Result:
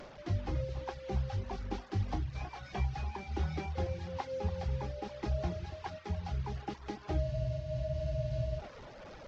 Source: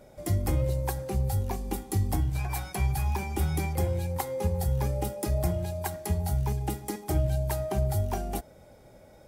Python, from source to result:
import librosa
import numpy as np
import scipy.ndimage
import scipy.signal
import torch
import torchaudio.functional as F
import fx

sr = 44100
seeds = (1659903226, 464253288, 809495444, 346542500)

p1 = fx.delta_mod(x, sr, bps=32000, step_db=-35.5)
p2 = fx.high_shelf(p1, sr, hz=2900.0, db=-9.5)
p3 = p2 + fx.echo_single(p2, sr, ms=285, db=-11.5, dry=0)
p4 = fx.dereverb_blind(p3, sr, rt60_s=0.68)
p5 = fx.peak_eq(p4, sr, hz=140.0, db=-3.5, octaves=3.0)
p6 = fx.spec_freeze(p5, sr, seeds[0], at_s=7.24, hold_s=1.35)
p7 = fx.am_noise(p6, sr, seeds[1], hz=5.7, depth_pct=50)
y = p7 * 10.0 ** (-1.5 / 20.0)